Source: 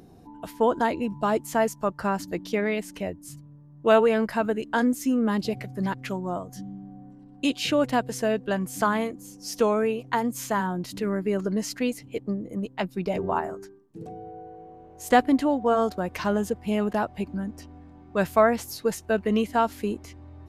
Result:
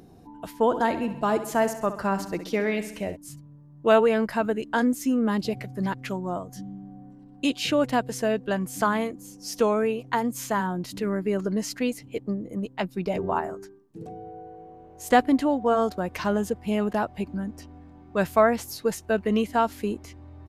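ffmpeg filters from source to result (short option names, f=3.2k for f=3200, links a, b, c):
-filter_complex "[0:a]asplit=3[a][b][c];[a]afade=t=out:st=0.71:d=0.02[d];[b]aecho=1:1:66|132|198|264|330|396:0.251|0.143|0.0816|0.0465|0.0265|0.0151,afade=t=in:st=0.71:d=0.02,afade=t=out:st=3.15:d=0.02[e];[c]afade=t=in:st=3.15:d=0.02[f];[d][e][f]amix=inputs=3:normalize=0"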